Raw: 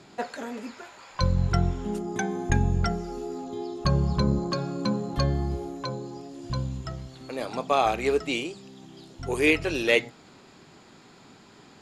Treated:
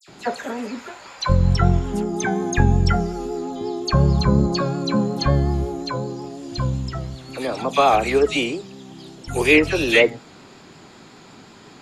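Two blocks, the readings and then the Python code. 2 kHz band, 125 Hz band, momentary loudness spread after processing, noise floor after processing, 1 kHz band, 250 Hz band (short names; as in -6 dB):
+7.0 dB, +7.0 dB, 15 LU, -46 dBFS, +7.0 dB, +7.0 dB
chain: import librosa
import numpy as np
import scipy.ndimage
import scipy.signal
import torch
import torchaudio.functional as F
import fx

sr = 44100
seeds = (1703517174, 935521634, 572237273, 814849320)

y = fx.dispersion(x, sr, late='lows', ms=82.0, hz=2500.0)
y = fx.vibrato(y, sr, rate_hz=5.5, depth_cents=31.0)
y = F.gain(torch.from_numpy(y), 7.0).numpy()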